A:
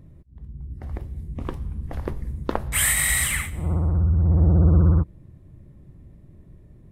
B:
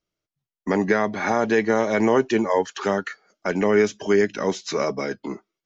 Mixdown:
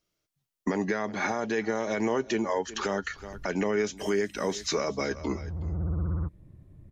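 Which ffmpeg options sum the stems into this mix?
ffmpeg -i stem1.wav -i stem2.wav -filter_complex "[0:a]acrossover=split=330|1400[link_01][link_02][link_03];[link_01]acompressor=threshold=-23dB:ratio=4[link_04];[link_02]acompressor=threshold=-43dB:ratio=4[link_05];[link_03]acompressor=threshold=-30dB:ratio=4[link_06];[link_04][link_05][link_06]amix=inputs=3:normalize=0,adelay=1250,volume=-4.5dB[link_07];[1:a]highshelf=frequency=4000:gain=6,volume=2dB,asplit=3[link_08][link_09][link_10];[link_09]volume=-20dB[link_11];[link_10]apad=whole_len=360141[link_12];[link_07][link_12]sidechaincompress=threshold=-32dB:ratio=6:attack=16:release=687[link_13];[link_11]aecho=0:1:369:1[link_14];[link_13][link_08][link_14]amix=inputs=3:normalize=0,alimiter=limit=-18dB:level=0:latency=1:release=453" out.wav

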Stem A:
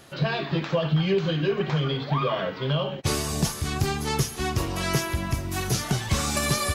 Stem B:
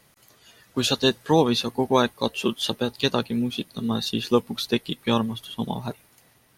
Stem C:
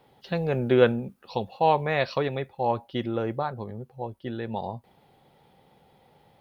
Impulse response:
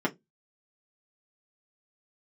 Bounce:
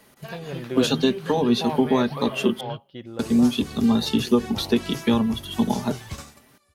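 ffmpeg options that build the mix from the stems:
-filter_complex "[0:a]volume=-10dB[link_01];[1:a]acrossover=split=160[link_02][link_03];[link_03]acompressor=threshold=-26dB:ratio=4[link_04];[link_02][link_04]amix=inputs=2:normalize=0,volume=1.5dB,asplit=3[link_05][link_06][link_07];[link_05]atrim=end=2.61,asetpts=PTS-STARTPTS,afade=type=out:start_time=2.606:duration=0.004:curve=hsin[link_08];[link_06]atrim=start=2.61:end=3.19,asetpts=PTS-STARTPTS,volume=0[link_09];[link_07]atrim=start=3.19,asetpts=PTS-STARTPTS,afade=type=in:duration=0.004:curve=hsin[link_10];[link_08][link_09][link_10]concat=n=3:v=0:a=1,asplit=3[link_11][link_12][link_13];[link_12]volume=-13.5dB[link_14];[2:a]volume=-9dB[link_15];[link_13]apad=whole_len=297440[link_16];[link_01][link_16]sidechaingate=range=-30dB:threshold=-54dB:ratio=16:detection=peak[link_17];[3:a]atrim=start_sample=2205[link_18];[link_14][link_18]afir=irnorm=-1:irlink=0[link_19];[link_17][link_11][link_15][link_19]amix=inputs=4:normalize=0"

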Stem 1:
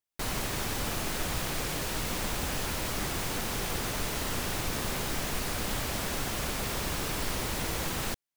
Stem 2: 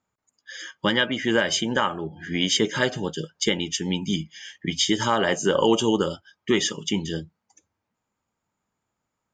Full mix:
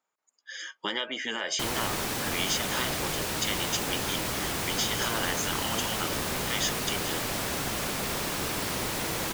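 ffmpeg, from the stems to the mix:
ffmpeg -i stem1.wav -i stem2.wav -filter_complex "[0:a]adelay=1400,volume=2.5dB[link_01];[1:a]highpass=460,acompressor=threshold=-22dB:ratio=6,volume=-1.5dB[link_02];[link_01][link_02]amix=inputs=2:normalize=0,afftfilt=real='re*lt(hypot(re,im),0.178)':imag='im*lt(hypot(re,im),0.178)':win_size=1024:overlap=0.75" out.wav

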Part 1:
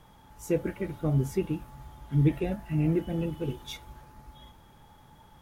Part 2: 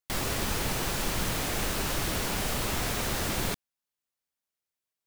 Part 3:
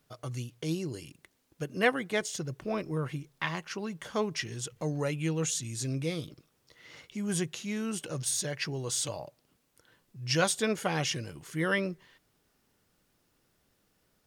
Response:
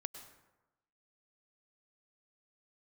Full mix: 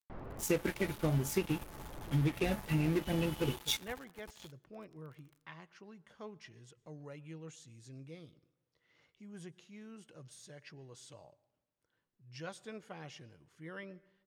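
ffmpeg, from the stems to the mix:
-filter_complex "[0:a]acompressor=threshold=-27dB:ratio=6,aeval=exprs='sgn(val(0))*max(abs(val(0))-0.00501,0)':channel_layout=same,crystalizer=i=9.5:c=0,volume=-1dB,asplit=3[link_01][link_02][link_03];[link_02]volume=-19dB[link_04];[1:a]lowpass=1100,volume=-13dB[link_05];[2:a]adelay=2050,volume=-19dB,asplit=2[link_06][link_07];[link_07]volume=-10dB[link_08];[link_03]apad=whole_len=223228[link_09];[link_05][link_09]sidechaincompress=threshold=-36dB:ratio=8:attack=16:release=824[link_10];[3:a]atrim=start_sample=2205[link_11];[link_04][link_08]amix=inputs=2:normalize=0[link_12];[link_12][link_11]afir=irnorm=-1:irlink=0[link_13];[link_01][link_10][link_06][link_13]amix=inputs=4:normalize=0,lowpass=frequency=3000:poles=1"

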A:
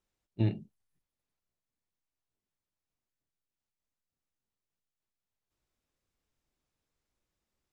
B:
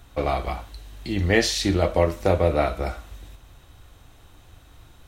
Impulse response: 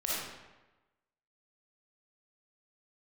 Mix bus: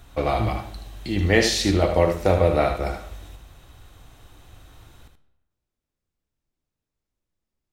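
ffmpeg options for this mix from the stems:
-filter_complex "[0:a]lowshelf=frequency=380:gain=7.5,volume=-5.5dB,asplit=2[link_01][link_02];[link_02]volume=-14.5dB[link_03];[1:a]volume=0dB,asplit=3[link_04][link_05][link_06];[link_05]volume=-18.5dB[link_07];[link_06]volume=-6.5dB[link_08];[2:a]atrim=start_sample=2205[link_09];[link_03][link_07]amix=inputs=2:normalize=0[link_10];[link_10][link_09]afir=irnorm=-1:irlink=0[link_11];[link_08]aecho=0:1:77:1[link_12];[link_01][link_04][link_11][link_12]amix=inputs=4:normalize=0"

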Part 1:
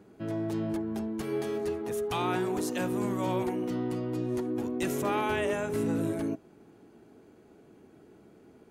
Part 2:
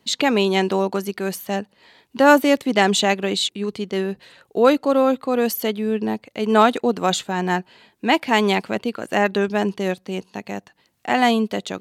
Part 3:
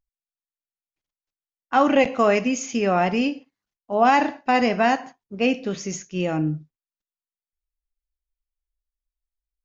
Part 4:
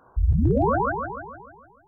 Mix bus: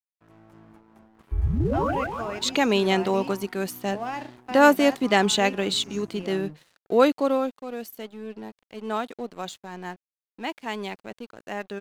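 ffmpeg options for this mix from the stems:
ffmpeg -i stem1.wav -i stem2.wav -i stem3.wav -i stem4.wav -filter_complex "[0:a]acrossover=split=4900[link_01][link_02];[link_02]acompressor=threshold=-54dB:ratio=4:attack=1:release=60[link_03];[link_01][link_03]amix=inputs=2:normalize=0,equalizer=frequency=500:width_type=o:width=1:gain=-12,equalizer=frequency=1000:width_type=o:width=1:gain=7,equalizer=frequency=4000:width_type=o:width=1:gain=-11,volume=-11dB[link_04];[1:a]adelay=2350,volume=-3dB,afade=type=out:start_time=7.16:duration=0.44:silence=0.298538[link_05];[2:a]volume=-14.5dB[link_06];[3:a]adelay=1150,volume=-3.5dB[link_07];[link_04][link_05][link_06][link_07]amix=inputs=4:normalize=0,aeval=exprs='sgn(val(0))*max(abs(val(0))-0.00398,0)':channel_layout=same" out.wav

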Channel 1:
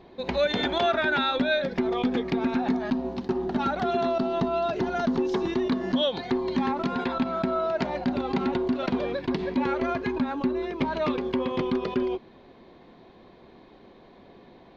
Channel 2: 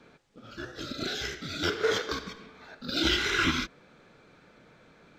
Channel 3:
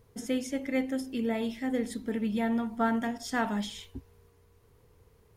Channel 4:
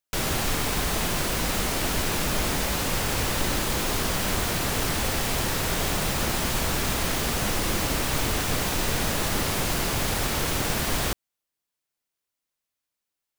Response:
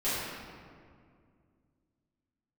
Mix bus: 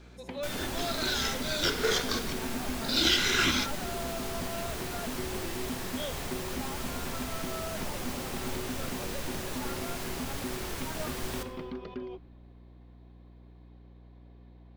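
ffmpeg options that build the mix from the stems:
-filter_complex "[0:a]aeval=exprs='val(0)+0.0126*(sin(2*PI*60*n/s)+sin(2*PI*2*60*n/s)/2+sin(2*PI*3*60*n/s)/3+sin(2*PI*4*60*n/s)/4+sin(2*PI*5*60*n/s)/5)':channel_layout=same,volume=-13dB[link_01];[1:a]highshelf=frequency=3700:gain=12,volume=-3dB[link_02];[2:a]volume=-15.5dB[link_03];[3:a]adelay=300,volume=-13dB,asplit=2[link_04][link_05];[link_05]volume=-16dB[link_06];[4:a]atrim=start_sample=2205[link_07];[link_06][link_07]afir=irnorm=-1:irlink=0[link_08];[link_01][link_02][link_03][link_04][link_08]amix=inputs=5:normalize=0"

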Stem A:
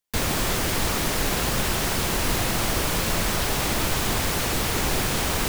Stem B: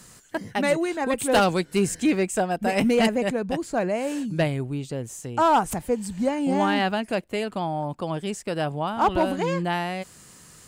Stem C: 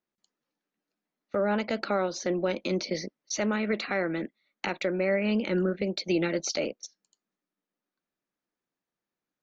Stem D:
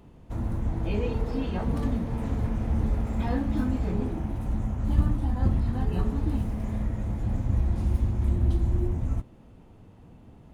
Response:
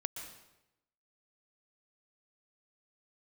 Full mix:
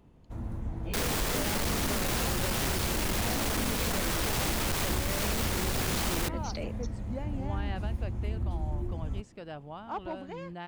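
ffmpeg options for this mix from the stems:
-filter_complex "[0:a]asoftclip=type=hard:threshold=-26dB,adelay=800,volume=0dB[link_01];[1:a]adelay=900,volume=-15.5dB[link_02];[2:a]volume=-3dB[link_03];[3:a]volume=-7dB[link_04];[link_02][link_03]amix=inputs=2:normalize=0,lowpass=4700,alimiter=level_in=3.5dB:limit=-24dB:level=0:latency=1:release=363,volume=-3.5dB,volume=0dB[link_05];[link_01][link_04][link_05]amix=inputs=3:normalize=0,acompressor=threshold=-26dB:ratio=6"

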